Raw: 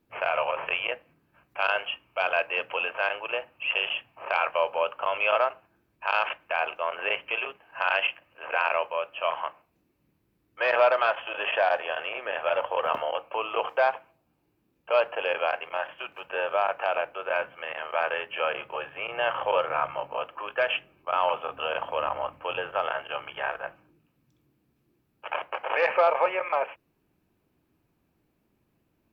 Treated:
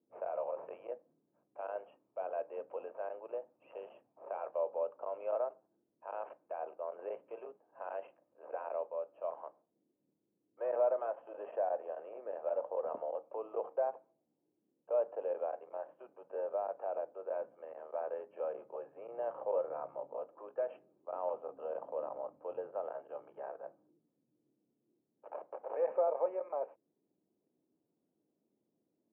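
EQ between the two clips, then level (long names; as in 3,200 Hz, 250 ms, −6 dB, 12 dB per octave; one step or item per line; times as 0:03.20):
flat-topped band-pass 370 Hz, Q 0.77
high-frequency loss of the air 220 metres
parametric band 480 Hz +2 dB
−7.5 dB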